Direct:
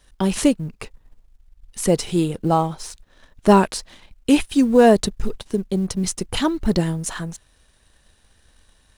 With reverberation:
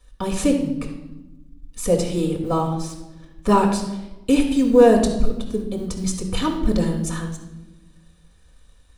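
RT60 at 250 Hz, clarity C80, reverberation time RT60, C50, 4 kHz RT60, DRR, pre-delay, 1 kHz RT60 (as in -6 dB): 1.7 s, 9.0 dB, 1.0 s, 6.5 dB, 0.75 s, 0.0 dB, 4 ms, 0.85 s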